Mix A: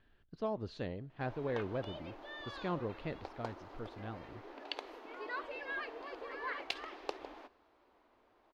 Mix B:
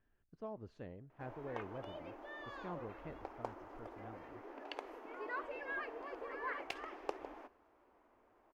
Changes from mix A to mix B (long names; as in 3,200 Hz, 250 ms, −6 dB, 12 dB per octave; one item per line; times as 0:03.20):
speech −9.0 dB
master: add parametric band 4,000 Hz −13.5 dB 0.91 octaves